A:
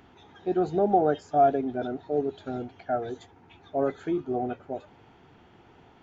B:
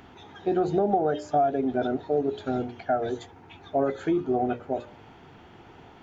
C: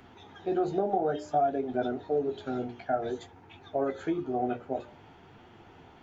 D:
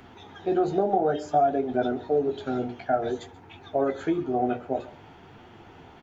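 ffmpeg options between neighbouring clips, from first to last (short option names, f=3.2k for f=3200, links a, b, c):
-af "bandreject=f=60:t=h:w=6,bandreject=f=120:t=h:w=6,bandreject=f=180:t=h:w=6,bandreject=f=240:t=h:w=6,bandreject=f=300:t=h:w=6,bandreject=f=360:t=h:w=6,bandreject=f=420:t=h:w=6,bandreject=f=480:t=h:w=6,bandreject=f=540:t=h:w=6,bandreject=f=600:t=h:w=6,acompressor=threshold=-26dB:ratio=6,volume=6dB"
-filter_complex "[0:a]acrossover=split=270[a][b];[a]alimiter=level_in=7dB:limit=-24dB:level=0:latency=1,volume=-7dB[c];[c][b]amix=inputs=2:normalize=0,flanger=delay=7.9:depth=9:regen=-37:speed=0.55:shape=triangular"
-af "aecho=1:1:134:0.0944,volume=4.5dB"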